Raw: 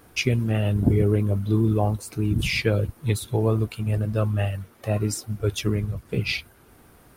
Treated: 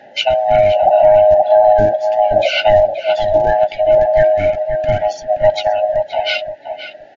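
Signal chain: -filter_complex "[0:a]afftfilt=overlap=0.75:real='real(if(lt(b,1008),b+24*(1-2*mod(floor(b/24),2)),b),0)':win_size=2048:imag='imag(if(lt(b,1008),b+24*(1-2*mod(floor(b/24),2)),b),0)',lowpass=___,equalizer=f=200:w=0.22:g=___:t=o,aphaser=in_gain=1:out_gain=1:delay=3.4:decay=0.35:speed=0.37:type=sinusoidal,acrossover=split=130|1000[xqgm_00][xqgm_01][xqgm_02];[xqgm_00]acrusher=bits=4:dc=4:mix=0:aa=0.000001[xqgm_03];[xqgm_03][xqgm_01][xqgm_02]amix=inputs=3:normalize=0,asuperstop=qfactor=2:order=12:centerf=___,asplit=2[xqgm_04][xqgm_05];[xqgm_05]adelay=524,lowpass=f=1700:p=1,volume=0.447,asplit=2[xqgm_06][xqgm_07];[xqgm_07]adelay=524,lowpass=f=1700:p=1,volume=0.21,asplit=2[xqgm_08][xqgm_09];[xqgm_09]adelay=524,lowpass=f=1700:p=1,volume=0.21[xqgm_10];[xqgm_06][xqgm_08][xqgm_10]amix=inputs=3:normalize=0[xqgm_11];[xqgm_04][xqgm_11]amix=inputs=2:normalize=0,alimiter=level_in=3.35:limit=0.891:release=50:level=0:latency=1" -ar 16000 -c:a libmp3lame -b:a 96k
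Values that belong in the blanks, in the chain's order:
3200, -9.5, 1100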